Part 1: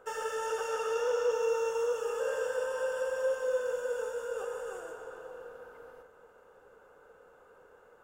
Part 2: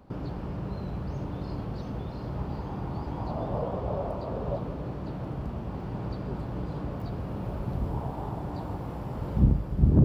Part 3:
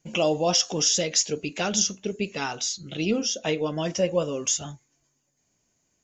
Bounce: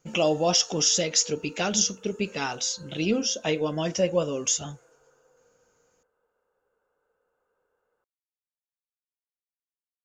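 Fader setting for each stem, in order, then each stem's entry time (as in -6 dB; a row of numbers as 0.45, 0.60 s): -18.0 dB, off, 0.0 dB; 0.00 s, off, 0.00 s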